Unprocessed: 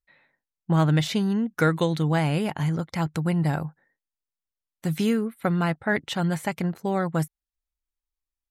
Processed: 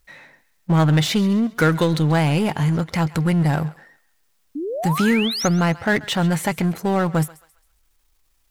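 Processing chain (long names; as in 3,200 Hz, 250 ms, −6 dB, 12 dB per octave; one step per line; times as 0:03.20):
power curve on the samples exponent 0.7
sound drawn into the spectrogram rise, 0:04.55–0:05.48, 270–6,800 Hz −28 dBFS
feedback echo with a high-pass in the loop 134 ms, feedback 39%, high-pass 840 Hz, level −17.5 dB
level +2 dB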